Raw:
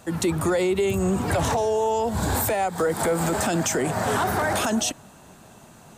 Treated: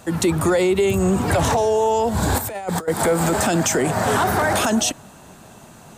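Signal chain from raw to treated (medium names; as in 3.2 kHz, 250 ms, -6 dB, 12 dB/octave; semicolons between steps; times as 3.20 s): 2.38–2.88 s: compressor with a negative ratio -29 dBFS, ratio -0.5; trim +4.5 dB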